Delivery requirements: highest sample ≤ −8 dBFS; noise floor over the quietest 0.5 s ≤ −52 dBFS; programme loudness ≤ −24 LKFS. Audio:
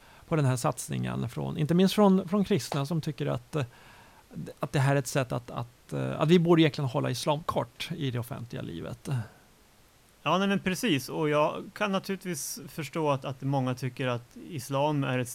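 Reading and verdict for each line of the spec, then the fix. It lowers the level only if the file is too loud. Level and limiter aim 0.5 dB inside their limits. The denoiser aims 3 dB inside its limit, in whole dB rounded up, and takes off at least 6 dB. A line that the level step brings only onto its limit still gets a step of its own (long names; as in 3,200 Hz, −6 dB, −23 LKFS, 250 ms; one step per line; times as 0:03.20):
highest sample −10.5 dBFS: in spec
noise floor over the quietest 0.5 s −60 dBFS: in spec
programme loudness −29.0 LKFS: in spec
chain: no processing needed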